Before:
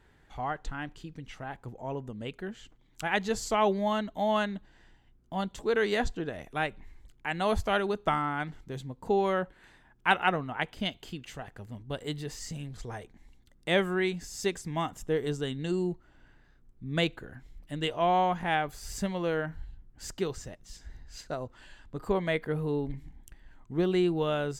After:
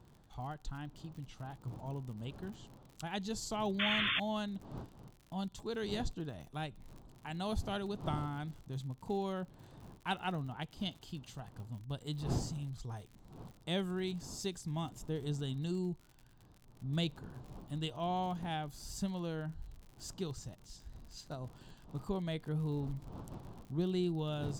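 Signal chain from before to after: wind noise 480 Hz -46 dBFS; graphic EQ 125/500/1000/2000/4000 Hz +7/-7/+4/-12/+5 dB; painted sound noise, 3.79–4.2, 1000–3600 Hz -25 dBFS; dynamic EQ 1100 Hz, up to -7 dB, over -44 dBFS, Q 1.4; crackle 70/s -41 dBFS; gain -6.5 dB

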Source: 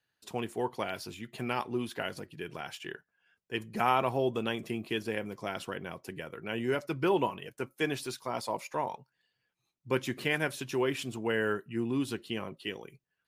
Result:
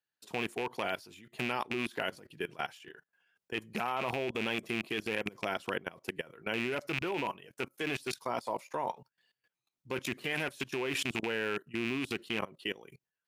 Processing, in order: rattling part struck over -37 dBFS, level -24 dBFS; low shelf 130 Hz -10 dB; level quantiser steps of 20 dB; gain +6.5 dB

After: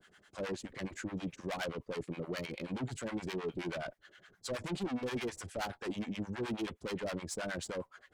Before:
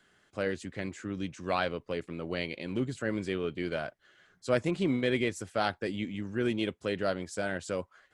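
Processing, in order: tube stage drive 37 dB, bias 0.25; harmonic tremolo 9.5 Hz, depth 100%, crossover 670 Hz; gain +7 dB

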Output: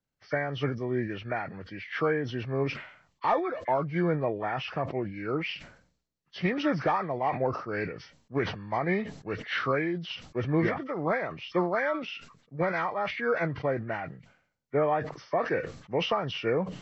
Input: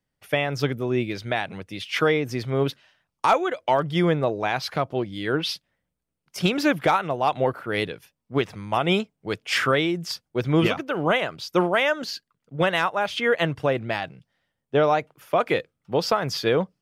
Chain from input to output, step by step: nonlinear frequency compression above 1000 Hz 1.5:1; sustainer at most 93 dB/s; gain -6 dB

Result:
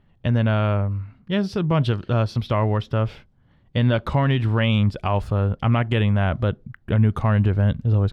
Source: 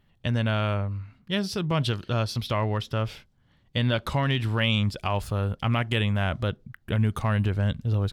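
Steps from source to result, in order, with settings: LPF 1300 Hz 6 dB/oct; gain +6 dB

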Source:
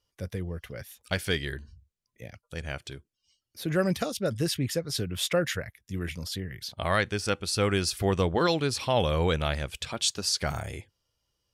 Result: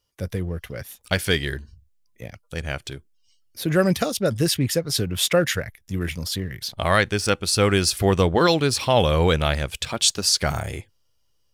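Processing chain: in parallel at -4 dB: backlash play -40.5 dBFS; on the sum: high shelf 9100 Hz +5.5 dB; gain +2.5 dB

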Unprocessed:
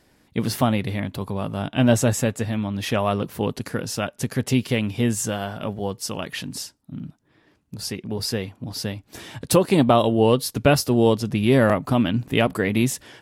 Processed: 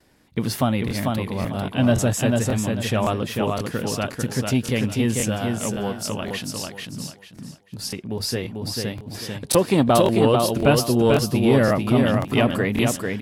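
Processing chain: gate with hold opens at -51 dBFS; on a send: feedback echo 0.444 s, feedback 27%, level -4 dB; on the sum: crackling interface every 0.54 s, samples 1024, repeat, from 0.32; core saturation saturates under 340 Hz

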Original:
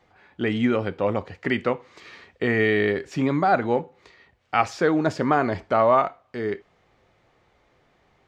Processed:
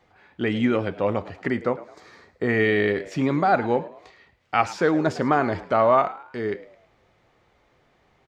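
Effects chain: 1.48–2.49 bell 2800 Hz -13.5 dB 0.82 oct; frequency-shifting echo 0.107 s, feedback 39%, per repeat +84 Hz, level -17.5 dB

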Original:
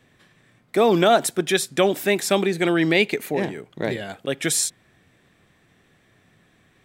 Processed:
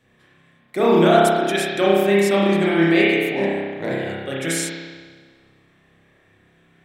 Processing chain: spring tank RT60 1.5 s, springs 30 ms, chirp 70 ms, DRR -6.5 dB; gain -5 dB

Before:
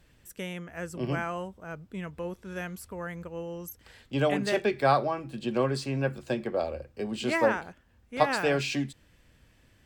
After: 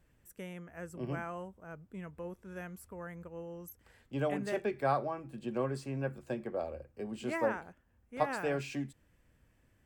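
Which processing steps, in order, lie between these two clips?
bell 4000 Hz -9.5 dB 1.3 oct; gain -7 dB

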